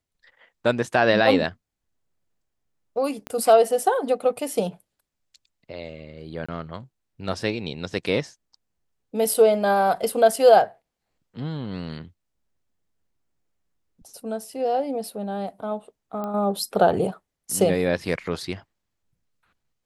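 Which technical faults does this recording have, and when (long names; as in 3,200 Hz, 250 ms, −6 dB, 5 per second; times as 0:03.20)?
0:03.27: click −18 dBFS
0:06.46–0:06.49: drop-out 25 ms
0:09.34: drop-out 2.9 ms
0:16.24: click −19 dBFS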